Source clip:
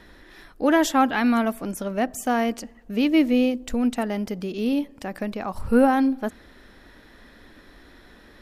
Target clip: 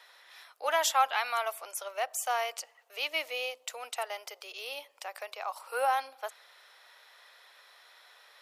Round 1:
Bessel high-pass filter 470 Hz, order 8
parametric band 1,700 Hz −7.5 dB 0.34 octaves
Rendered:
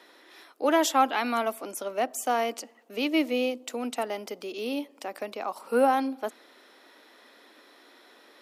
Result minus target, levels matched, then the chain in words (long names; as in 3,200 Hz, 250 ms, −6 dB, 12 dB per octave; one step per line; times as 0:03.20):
500 Hz band +3.5 dB
Bessel high-pass filter 1,000 Hz, order 8
parametric band 1,700 Hz −7.5 dB 0.34 octaves